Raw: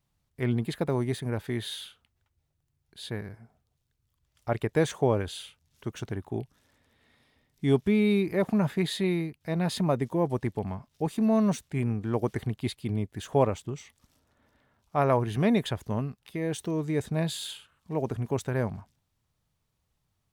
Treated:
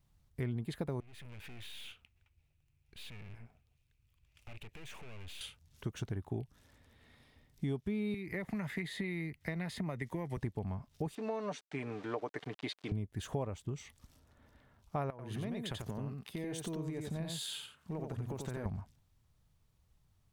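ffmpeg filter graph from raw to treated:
-filter_complex "[0:a]asettb=1/sr,asplit=3[s0][s1][s2];[s0]atrim=end=1.004[s3];[s1]atrim=start=1:end=5.41,asetpts=PTS-STARTPTS,afade=t=in:d=0.004:c=qsin,afade=t=out:st=4.406:d=0.004:c=qsin,acompressor=threshold=0.0126:ratio=4:attack=3.2:release=140:knee=1:detection=peak,aeval=exprs='(tanh(447*val(0)+0.65)-tanh(0.65))/447':c=same,equalizer=f=2500:w=2.5:g=14.5[s4];[s2]atrim=start=5.406[s5];[s3][s4]acrossfade=d=0.004:c1=hsin:c2=qsin[s6];[s6][s5]acrossfade=d=0.004:c1=qsin:c2=hsin,asettb=1/sr,asplit=3[s7][s8][s9];[s7]atrim=end=8.144[s10];[s8]atrim=start=8.14:end=10.37,asetpts=PTS-STARTPTS,afade=t=in:d=0.004:c=qsin,afade=t=out:st=2.226:d=0.004:c=qsin,acrossover=split=160|1300[s11][s12][s13];[s11]acompressor=threshold=0.00794:ratio=4[s14];[s12]acompressor=threshold=0.0178:ratio=4[s15];[s13]acompressor=threshold=0.00708:ratio=4[s16];[s14][s15][s16]amix=inputs=3:normalize=0,equalizer=f=2000:w=4.5:g=14[s17];[s9]atrim=start=10.366[s18];[s10][s17]acrossfade=d=0.004:c1=hsin:c2=qsin[s19];[s19][s18]acrossfade=d=0.004:c1=qsin:c2=hsin,asettb=1/sr,asplit=3[s20][s21][s22];[s20]atrim=end=11.154[s23];[s21]atrim=start=11.15:end=12.92,asetpts=PTS-STARTPTS,afade=t=in:d=0.004:c=qsin,afade=t=out:st=1.766:d=0.004:c=qsin,aecho=1:1:6.8:0.49,atrim=end_sample=78057,aeval=exprs='val(0)*gte(abs(val(0)),0.00596)':c=same,highpass=420,lowpass=4500[s24];[s22]atrim=start=12.916[s25];[s23][s24]acrossfade=d=0.004:c1=hsin:c2=qsin[s26];[s26][s25]acrossfade=d=0.004:c1=qsin:c2=hsin,asettb=1/sr,asplit=3[s27][s28][s29];[s27]atrim=end=15.104[s30];[s28]atrim=start=15.1:end=18.66,asetpts=PTS-STARTPTS,afade=t=in:d=0.004:c=qsin,afade=t=out:st=3.556:d=0.004:c=qsin,highpass=120,acompressor=threshold=0.0126:ratio=5:attack=3.2:release=140:knee=1:detection=peak,aecho=1:1:89:0.596,atrim=end_sample=156996[s31];[s29]atrim=start=18.656[s32];[s30][s31]acrossfade=d=0.004:c1=hsin:c2=qsin[s33];[s33][s32]acrossfade=d=0.004:c1=qsin:c2=hsin,lowshelf=f=110:g=10.5,acompressor=threshold=0.0178:ratio=5"

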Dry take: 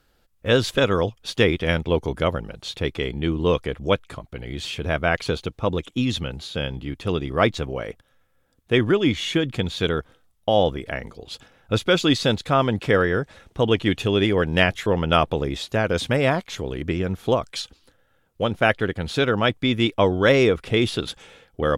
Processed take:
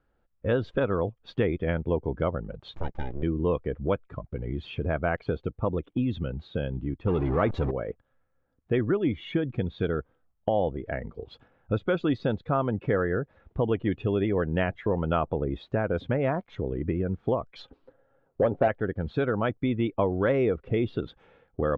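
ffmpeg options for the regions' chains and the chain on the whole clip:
-filter_complex "[0:a]asettb=1/sr,asplit=3[s0][s1][s2];[s0]atrim=end=2.744[s3];[s1]atrim=start=2.74:end=3.23,asetpts=PTS-STARTPTS,afade=t=in:d=0.004:c=qsin,afade=t=out:st=0.486:d=0.004:c=qsin,highpass=f=57:p=1,acompressor=mode=upward:threshold=0.00794:ratio=2.5:attack=3.2:release=140:knee=2.83:detection=peak,aeval=exprs='abs(val(0))':c=same[s4];[s2]atrim=start=3.226[s5];[s3][s4]acrossfade=d=0.004:c1=hsin:c2=qsin[s6];[s6][s5]acrossfade=d=0.004:c1=qsin:c2=hsin,asettb=1/sr,asplit=3[s7][s8][s9];[s7]atrim=end=7.064[s10];[s8]atrim=start=7.06:end=7.71,asetpts=PTS-STARTPTS,afade=t=in:d=0.004:c=qsin,afade=t=out:st=0.646:d=0.004:c=qsin,aeval=exprs='val(0)+0.5*0.1*sgn(val(0))':c=same,bandreject=f=680:w=19[s11];[s9]atrim=start=7.706[s12];[s10][s11]acrossfade=d=0.004:c1=hsin:c2=qsin[s13];[s13][s12]acrossfade=d=0.004:c1=qsin:c2=hsin,asettb=1/sr,asplit=3[s14][s15][s16];[s14]atrim=end=17.594[s17];[s15]atrim=start=17.59:end=18.68,asetpts=PTS-STARTPTS,afade=t=in:d=0.004:c=qsin,afade=t=out:st=1.086:d=0.004:c=qsin,equalizer=f=510:w=0.64:g=10,asoftclip=type=hard:threshold=0.355,aecho=1:1:7.3:0.37,atrim=end_sample=48069[s18];[s16]atrim=start=18.676[s19];[s17][s18]acrossfade=d=0.004:c1=hsin:c2=qsin[s20];[s20][s19]acrossfade=d=0.004:c1=qsin:c2=hsin,afftdn=nr=12:nf=-31,lowpass=1500,acompressor=threshold=0.0158:ratio=2,volume=1.78"

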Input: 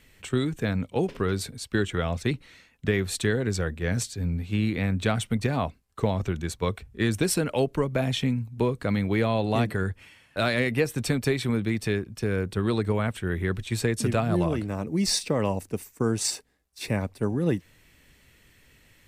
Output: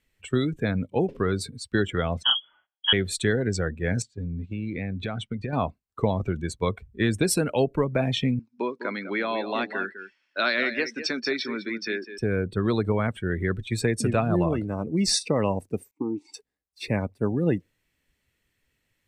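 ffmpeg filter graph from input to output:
-filter_complex "[0:a]asettb=1/sr,asplit=3[s0][s1][s2];[s0]atrim=end=2.234[s3];[s1]atrim=start=2.23:end=2.93,asetpts=PTS-STARTPTS,afade=t=in:d=0.004:c=qsin,afade=t=out:st=0.696:d=0.004:c=qsin,agate=range=0.1:threshold=0.002:ratio=16:release=100:detection=peak,asplit=2[s4][s5];[s5]adelay=30,volume=0.794[s6];[s4][s6]amix=inputs=2:normalize=0,atrim=end_sample=30870,lowpass=f=2900:t=q:w=0.5098,lowpass=f=2900:t=q:w=0.6013,lowpass=f=2900:t=q:w=0.9,lowpass=f=2900:t=q:w=2.563,afreqshift=-3400[s7];[s2]atrim=start=2.926[s8];[s3][s7]acrossfade=d=0.004:c1=hsin:c2=qsin[s9];[s9][s8]acrossfade=d=0.004:c1=qsin:c2=hsin,asettb=1/sr,asplit=3[s10][s11][s12];[s10]atrim=end=4.024[s13];[s11]atrim=start=4.02:end=5.53,asetpts=PTS-STARTPTS,afade=t=in:d=0.004:c=qsin,afade=t=out:st=1.506:d=0.004:c=qsin,lowpass=6000,agate=range=0.398:threshold=0.0158:ratio=16:release=100:detection=peak,acompressor=threshold=0.0398:ratio=4:attack=3.2:release=140:knee=1:detection=peak[s14];[s12]atrim=start=5.526[s15];[s13][s14]acrossfade=d=0.004:c1=hsin:c2=qsin[s16];[s16][s15]acrossfade=d=0.004:c1=qsin:c2=hsin,asettb=1/sr,asplit=3[s17][s18][s19];[s17]atrim=end=8.394[s20];[s18]atrim=start=8.39:end=12.18,asetpts=PTS-STARTPTS,afade=t=in:d=0.004:c=qsin,afade=t=out:st=3.786:d=0.004:c=qsin,highpass=f=280:w=0.5412,highpass=f=280:w=1.3066,equalizer=f=310:t=q:w=4:g=-3,equalizer=f=470:t=q:w=4:g=-8,equalizer=f=730:t=q:w=4:g=-5,equalizer=f=1500:t=q:w=4:g=4,equalizer=f=5200:t=q:w=4:g=9,lowpass=f=6300:w=0.5412,lowpass=f=6300:w=1.3066,aecho=1:1:202:0.316,atrim=end_sample=167139[s21];[s19]atrim=start=12.176[s22];[s20][s21]acrossfade=d=0.004:c1=hsin:c2=qsin[s23];[s23][s22]acrossfade=d=0.004:c1=qsin:c2=hsin,asettb=1/sr,asplit=3[s24][s25][s26];[s24]atrim=end=15.914[s27];[s25]atrim=start=15.91:end=16.34,asetpts=PTS-STARTPTS,afade=t=in:d=0.004:c=qsin,afade=t=out:st=0.426:d=0.004:c=qsin,asplit=3[s28][s29][s30];[s28]bandpass=f=300:t=q:w=8,volume=1[s31];[s29]bandpass=f=870:t=q:w=8,volume=0.501[s32];[s30]bandpass=f=2240:t=q:w=8,volume=0.355[s33];[s31][s32][s33]amix=inputs=3:normalize=0,acontrast=72[s34];[s26]atrim=start=16.336[s35];[s27][s34]acrossfade=d=0.004:c1=hsin:c2=qsin[s36];[s36][s35]acrossfade=d=0.004:c1=qsin:c2=hsin,afftdn=nr=18:nf=-38,lowshelf=f=87:g=-5,volume=1.26"

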